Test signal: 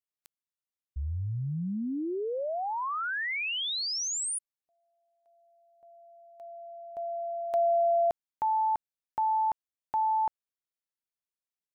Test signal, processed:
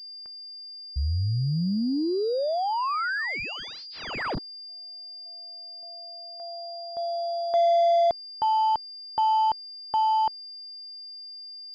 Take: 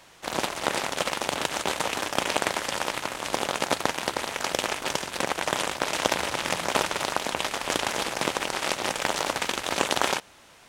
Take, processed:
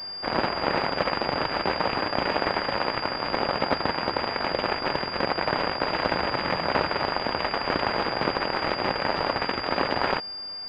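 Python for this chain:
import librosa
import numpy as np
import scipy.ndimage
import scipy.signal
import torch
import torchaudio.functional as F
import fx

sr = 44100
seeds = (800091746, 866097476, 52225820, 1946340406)

p1 = fx.rider(x, sr, range_db=10, speed_s=2.0)
p2 = x + (p1 * 10.0 ** (-1.5 / 20.0))
p3 = 10.0 ** (-11.5 / 20.0) * np.tanh(p2 / 10.0 ** (-11.5 / 20.0))
y = fx.pwm(p3, sr, carrier_hz=4800.0)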